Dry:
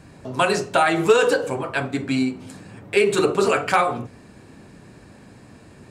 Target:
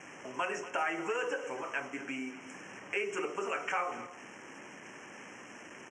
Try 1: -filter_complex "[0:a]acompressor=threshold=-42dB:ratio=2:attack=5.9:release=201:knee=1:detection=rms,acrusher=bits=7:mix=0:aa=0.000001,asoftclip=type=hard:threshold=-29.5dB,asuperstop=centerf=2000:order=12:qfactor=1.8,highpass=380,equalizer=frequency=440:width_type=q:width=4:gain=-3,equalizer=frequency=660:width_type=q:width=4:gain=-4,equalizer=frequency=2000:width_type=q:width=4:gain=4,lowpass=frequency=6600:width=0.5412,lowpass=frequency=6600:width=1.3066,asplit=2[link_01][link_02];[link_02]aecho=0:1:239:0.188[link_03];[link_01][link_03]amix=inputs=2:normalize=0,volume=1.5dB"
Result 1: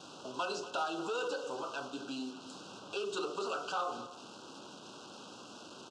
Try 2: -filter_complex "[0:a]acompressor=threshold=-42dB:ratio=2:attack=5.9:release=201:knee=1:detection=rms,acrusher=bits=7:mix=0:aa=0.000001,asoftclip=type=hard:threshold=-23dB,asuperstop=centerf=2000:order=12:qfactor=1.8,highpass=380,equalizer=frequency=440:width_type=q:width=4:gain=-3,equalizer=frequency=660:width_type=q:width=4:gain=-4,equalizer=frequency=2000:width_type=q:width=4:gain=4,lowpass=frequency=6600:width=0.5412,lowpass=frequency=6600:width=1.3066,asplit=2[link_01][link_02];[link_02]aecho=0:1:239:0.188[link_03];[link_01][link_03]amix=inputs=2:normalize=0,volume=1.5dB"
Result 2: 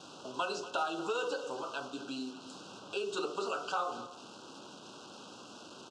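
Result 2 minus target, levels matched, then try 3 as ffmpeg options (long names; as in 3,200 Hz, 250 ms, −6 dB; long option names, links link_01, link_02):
4,000 Hz band +6.5 dB
-filter_complex "[0:a]acompressor=threshold=-42dB:ratio=2:attack=5.9:release=201:knee=1:detection=rms,acrusher=bits=7:mix=0:aa=0.000001,asoftclip=type=hard:threshold=-23dB,asuperstop=centerf=4100:order=12:qfactor=1.8,highpass=380,equalizer=frequency=440:width_type=q:width=4:gain=-3,equalizer=frequency=660:width_type=q:width=4:gain=-4,equalizer=frequency=2000:width_type=q:width=4:gain=4,lowpass=frequency=6600:width=0.5412,lowpass=frequency=6600:width=1.3066,asplit=2[link_01][link_02];[link_02]aecho=0:1:239:0.188[link_03];[link_01][link_03]amix=inputs=2:normalize=0,volume=1.5dB"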